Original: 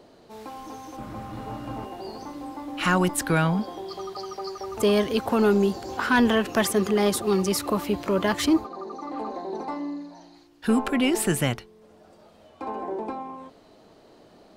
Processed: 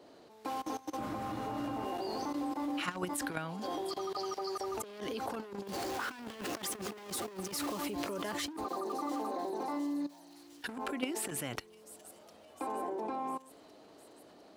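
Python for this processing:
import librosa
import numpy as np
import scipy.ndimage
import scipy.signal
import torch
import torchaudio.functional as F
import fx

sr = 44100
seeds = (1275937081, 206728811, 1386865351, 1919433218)

y = fx.zero_step(x, sr, step_db=-26.5, at=(5.67, 7.72))
y = fx.level_steps(y, sr, step_db=20)
y = np.clip(10.0 ** (24.0 / 20.0) * y, -1.0, 1.0) / 10.0 ** (24.0 / 20.0)
y = scipy.signal.sosfilt(scipy.signal.butter(2, 54.0, 'highpass', fs=sr, output='sos'), y)
y = fx.bass_treble(y, sr, bass_db=-7, treble_db=0)
y = fx.echo_wet_highpass(y, sr, ms=705, feedback_pct=63, hz=5100.0, wet_db=-14)
y = fx.over_compress(y, sr, threshold_db=-35.0, ratio=-0.5)
y = fx.peak_eq(y, sr, hz=290.0, db=5.0, octaves=0.21)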